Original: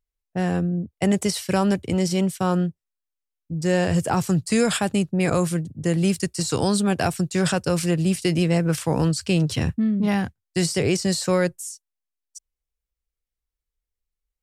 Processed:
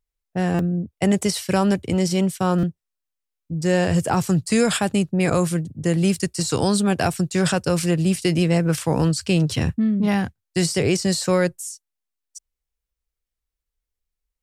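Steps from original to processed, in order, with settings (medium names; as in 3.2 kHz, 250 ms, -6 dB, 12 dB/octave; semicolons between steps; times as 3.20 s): buffer glitch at 0.54/2.58 s, samples 256, times 8; trim +1.5 dB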